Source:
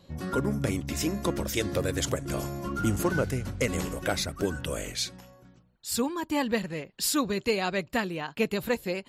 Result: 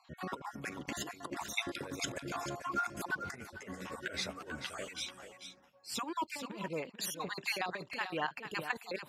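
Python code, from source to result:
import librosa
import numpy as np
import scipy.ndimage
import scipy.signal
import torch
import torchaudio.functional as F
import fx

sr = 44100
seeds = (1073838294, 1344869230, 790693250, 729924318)

y = fx.spec_dropout(x, sr, seeds[0], share_pct=36)
y = fx.lowpass(y, sr, hz=2100.0, slope=6)
y = fx.over_compress(y, sr, threshold_db=-33.0, ratio=-0.5)
y = fx.highpass(y, sr, hz=690.0, slope=6)
y = y + 10.0 ** (-9.5 / 20.0) * np.pad(y, (int(441 * sr / 1000.0), 0))[:len(y)]
y = fx.ensemble(y, sr, at=(3.31, 5.94), fade=0.02)
y = y * 10.0 ** (1.0 / 20.0)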